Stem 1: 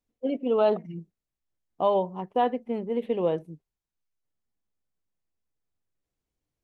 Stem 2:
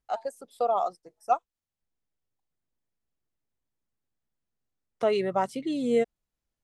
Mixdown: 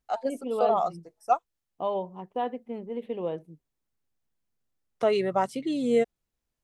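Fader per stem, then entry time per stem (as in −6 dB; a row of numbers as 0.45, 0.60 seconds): −6.0, +1.0 decibels; 0.00, 0.00 seconds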